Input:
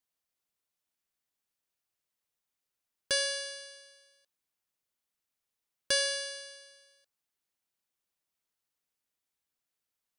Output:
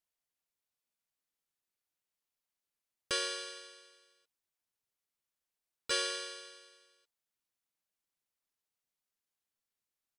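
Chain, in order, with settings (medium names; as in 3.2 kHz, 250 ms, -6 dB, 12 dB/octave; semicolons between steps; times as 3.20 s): harmony voices -7 st -3 dB, -3 st -1 dB; modulation noise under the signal 35 dB; trim -8 dB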